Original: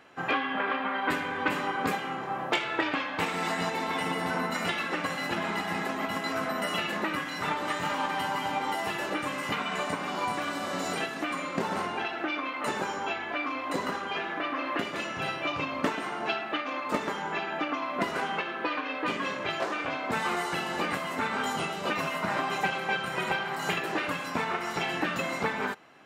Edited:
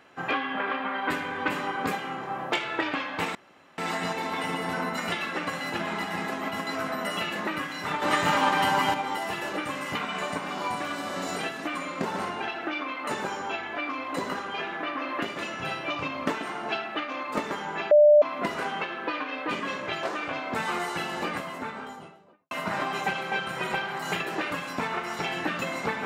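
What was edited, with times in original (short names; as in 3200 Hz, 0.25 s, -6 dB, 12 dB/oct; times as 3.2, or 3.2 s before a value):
3.35 insert room tone 0.43 s
7.59–8.51 gain +7 dB
17.48–17.79 bleep 595 Hz -12 dBFS
20.66–22.08 studio fade out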